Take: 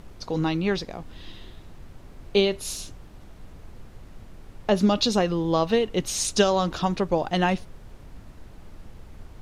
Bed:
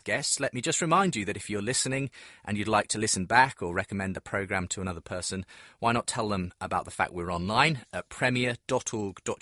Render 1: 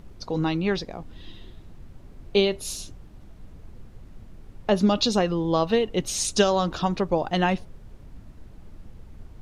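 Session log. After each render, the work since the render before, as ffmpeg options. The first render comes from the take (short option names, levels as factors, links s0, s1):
-af "afftdn=nr=6:nf=-46"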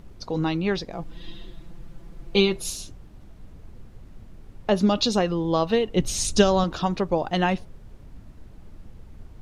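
-filter_complex "[0:a]asettb=1/sr,asplit=3[s0][s1][s2];[s0]atrim=end=0.924[s3];[s1]atrim=start=0.92:end=2.7,asetpts=PTS-STARTPTS,afade=t=in:d=0.004:c=qsin,afade=t=out:st=1.776:d=0.004:c=qsin,aecho=1:1:5.9:0.92,atrim=end_sample=78498[s4];[s2]atrim=start=2.696[s5];[s3][s4]acrossfade=d=0.004:c1=hsin:c2=qsin[s6];[s6][s5]acrossfade=d=0.004:c1=qsin:c2=hsin,asettb=1/sr,asplit=3[s7][s8][s9];[s7]atrim=end=5.964[s10];[s8]atrim=start=5.96:end=6.64,asetpts=PTS-STARTPTS,afade=t=in:d=0.004:c=qsin,afade=t=out:st=0.676:d=0.004:c=qsin,lowshelf=f=180:g=11[s11];[s9]atrim=start=6.636[s12];[s10][s11]acrossfade=d=0.004:c1=hsin:c2=qsin[s13];[s13][s12]acrossfade=d=0.004:c1=qsin:c2=hsin"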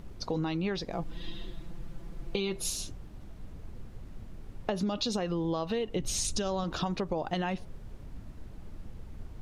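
-af "alimiter=limit=0.168:level=0:latency=1:release=49,acompressor=threshold=0.0398:ratio=6"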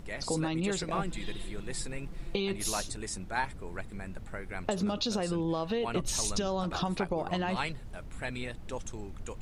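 -filter_complex "[1:a]volume=0.266[s0];[0:a][s0]amix=inputs=2:normalize=0"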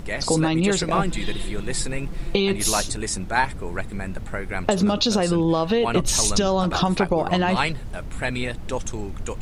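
-af "volume=3.55"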